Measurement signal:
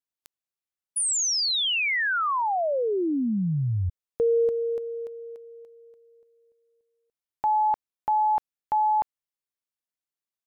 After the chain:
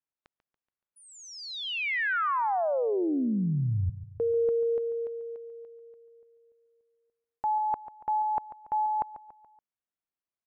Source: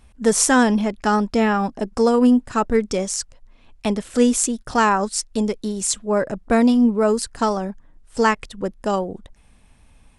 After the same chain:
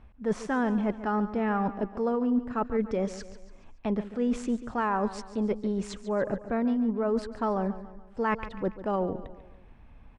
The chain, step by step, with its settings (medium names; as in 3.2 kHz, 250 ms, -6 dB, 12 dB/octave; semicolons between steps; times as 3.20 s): low-pass 1.9 kHz 12 dB/octave; reverse; compression, threshold -25 dBFS; reverse; feedback delay 142 ms, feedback 47%, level -14 dB